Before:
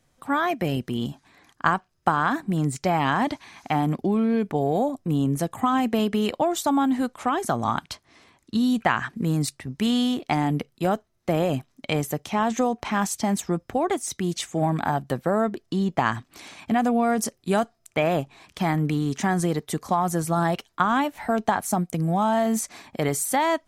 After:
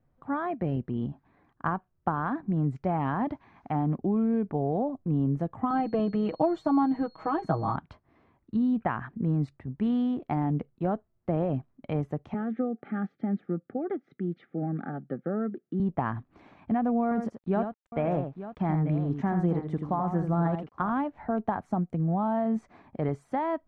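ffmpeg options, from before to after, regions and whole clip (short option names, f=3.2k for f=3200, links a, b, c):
-filter_complex "[0:a]asettb=1/sr,asplit=3[a][b][c];[a]atrim=end=5.704[d];[b]atrim=start=5.7:end=7.76,asetpts=PTS-STARTPTS,afade=t=in:d=0.004:c=qsin,afade=t=out:st=2.056:d=0.004:c=qsin,aecho=1:1:6.3:0.99,atrim=end_sample=90846,aeval=exprs='val(0)+0.0251*sin(2*PI*4300*n/s)':c=same[e];[c]atrim=start=7.756[f];[d][e]acrossfade=d=0.004:c1=hsin:c2=qsin[g];[g][f]acrossfade=d=0.004:c1=qsin:c2=hsin,asettb=1/sr,asplit=3[h][i][j];[h]atrim=end=12.344[k];[i]atrim=start=12.34:end=15.8,asetpts=PTS-STARTPTS,afade=t=in:d=0.004:c=qsin,afade=t=out:st=3.456:d=0.004:c=qsin,asuperstop=centerf=1000:order=8:qfactor=3.3,highpass=f=170:w=0.5412,highpass=f=170:w=1.3066,equalizer=f=670:t=q:w=4:g=-10,equalizer=f=950:t=q:w=4:g=-9,equalizer=f=2.7k:t=q:w=4:g=-10,lowpass=f=3.1k:w=0.5412,lowpass=f=3.1k:w=1.3066[l];[j]atrim=start=15.796[m];[k][l]acrossfade=d=0.004:c1=hsin:c2=qsin[n];[n][m]acrossfade=d=0.004:c1=qsin:c2=hsin,asettb=1/sr,asplit=3[o][p][q];[o]atrim=end=17.034[r];[p]atrim=start=17.03:end=20.9,asetpts=PTS-STARTPTS,afade=t=in:d=0.004:c=qsin,afade=t=out:st=3.866:d=0.004:c=qsin,aeval=exprs='val(0)*gte(abs(val(0)),0.00596)':c=same,aecho=1:1:82|890:0.422|0.237,atrim=end_sample=170667[s];[q]atrim=start=20.896[t];[r][s]acrossfade=d=0.004:c1=hsin:c2=qsin[u];[u][t]acrossfade=d=0.004:c1=qsin:c2=hsin,lowpass=1.3k,lowshelf=f=250:g=6.5,volume=-7dB"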